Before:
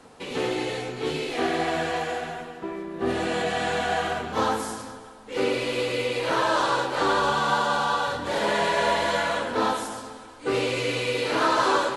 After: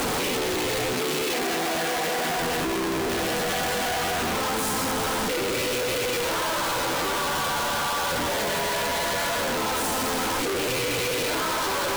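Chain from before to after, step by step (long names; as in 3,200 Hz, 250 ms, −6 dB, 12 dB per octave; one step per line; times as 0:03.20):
sign of each sample alone
0:00.93–0:02.37: high-pass filter 150 Hz 24 dB per octave
regular buffer underruns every 0.11 s, samples 512, repeat, from 0:00.31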